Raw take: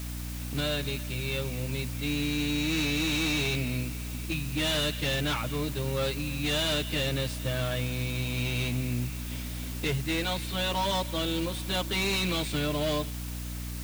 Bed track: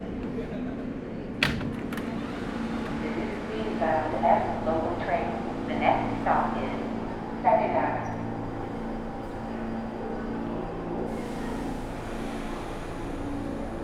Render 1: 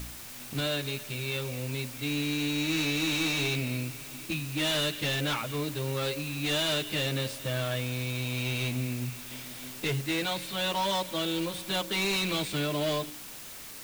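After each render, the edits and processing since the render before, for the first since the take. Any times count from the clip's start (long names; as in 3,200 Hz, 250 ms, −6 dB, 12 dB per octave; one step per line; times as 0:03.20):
hum removal 60 Hz, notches 9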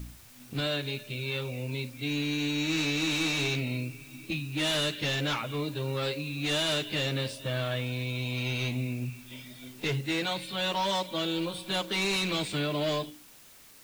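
noise reduction from a noise print 10 dB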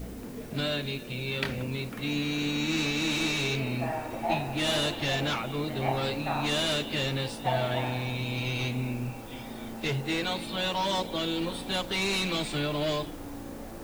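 mix in bed track −8 dB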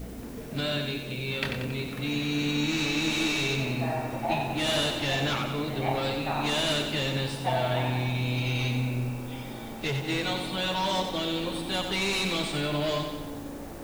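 echo with a time of its own for lows and highs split 470 Hz, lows 183 ms, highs 92 ms, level −6.5 dB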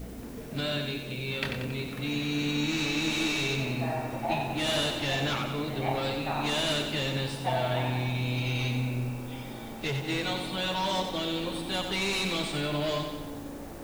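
level −1.5 dB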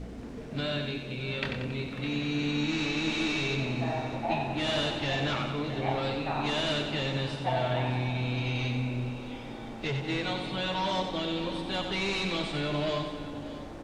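high-frequency loss of the air 94 metres
single-tap delay 610 ms −14.5 dB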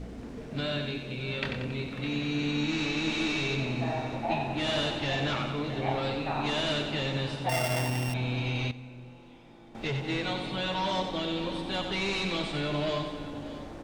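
0:07.49–0:08.14: samples sorted by size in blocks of 16 samples
0:08.71–0:09.75: tuned comb filter 170 Hz, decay 1.7 s, mix 80%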